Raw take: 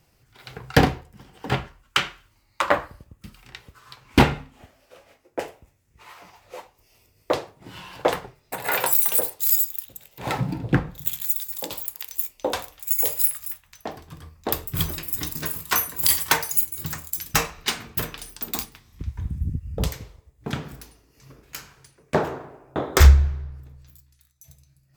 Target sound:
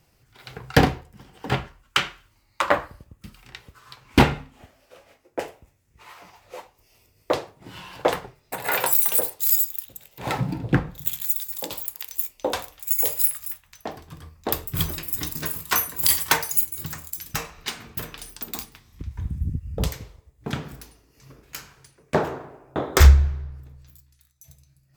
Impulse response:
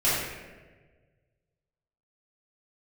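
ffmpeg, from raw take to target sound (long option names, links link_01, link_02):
-filter_complex "[0:a]asettb=1/sr,asplit=3[link_01][link_02][link_03];[link_01]atrim=end=16.844[link_04];[link_02]atrim=start=16.84:end=19.11,asetpts=PTS-STARTPTS,afade=type=in:duration=0.004:curve=qsin,afade=type=out:start_time=2.266:duration=0.004:curve=qsin,acompressor=threshold=-31dB:ratio=2[link_05];[link_03]atrim=start=19.106[link_06];[link_04][link_05]acrossfade=duration=0.004:curve1=hsin:curve2=qsin[link_07];[link_07][link_06]acrossfade=duration=0.004:curve1=qsin:curve2=hsin"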